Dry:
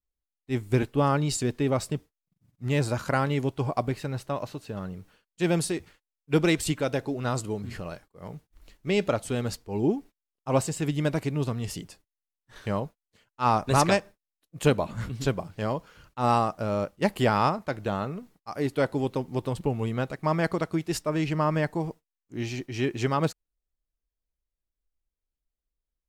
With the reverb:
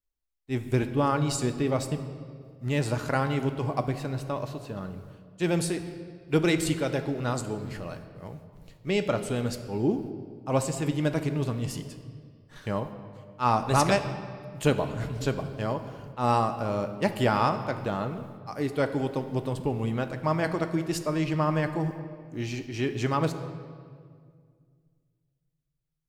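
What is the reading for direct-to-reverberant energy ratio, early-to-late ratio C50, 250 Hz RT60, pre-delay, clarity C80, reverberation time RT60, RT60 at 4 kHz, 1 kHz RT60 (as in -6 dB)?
8.0 dB, 10.0 dB, 2.6 s, 3 ms, 11.5 dB, 2.0 s, 1.5 s, 1.8 s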